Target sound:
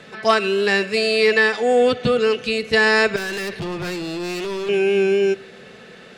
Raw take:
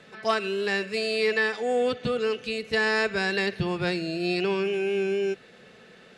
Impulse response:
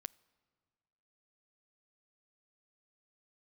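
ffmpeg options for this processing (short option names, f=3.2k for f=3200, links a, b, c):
-filter_complex "[0:a]acontrast=58,asettb=1/sr,asplit=3[a][b][c];[a]atrim=end=3.164[d];[b]atrim=start=3.16:end=4.69,asetpts=PTS-STARTPTS,afade=t=in:d=0.004:c=qsin,afade=t=out:st=1.526:d=0.004:c=qsin,aeval=exprs='(tanh(22.4*val(0)+0.1)-tanh(0.1))/22.4':c=same[e];[c]atrim=start=4.686[f];[d][e]acrossfade=d=0.004:c1=hsin:c2=qsin[g];[g][f]acrossfade=d=0.004:c1=qsin:c2=hsin[h];[1:a]atrim=start_sample=2205[i];[h][i]afir=irnorm=-1:irlink=0,volume=7dB"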